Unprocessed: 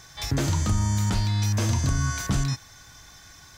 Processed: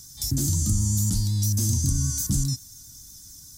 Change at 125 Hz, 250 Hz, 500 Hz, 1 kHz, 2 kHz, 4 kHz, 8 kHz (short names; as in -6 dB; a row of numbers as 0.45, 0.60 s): 0.0 dB, -0.5 dB, under -10 dB, under -15 dB, under -15 dB, -1.0 dB, +7.0 dB